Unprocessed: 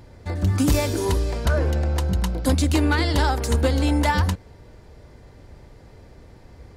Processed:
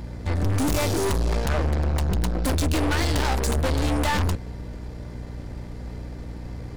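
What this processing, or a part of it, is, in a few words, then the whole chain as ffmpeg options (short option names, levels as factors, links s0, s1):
valve amplifier with mains hum: -af "aeval=exprs='(tanh(31.6*val(0)+0.5)-tanh(0.5))/31.6':c=same,aeval=exprs='val(0)+0.00708*(sin(2*PI*60*n/s)+sin(2*PI*2*60*n/s)/2+sin(2*PI*3*60*n/s)/3+sin(2*PI*4*60*n/s)/4+sin(2*PI*5*60*n/s)/5)':c=same,volume=2.66"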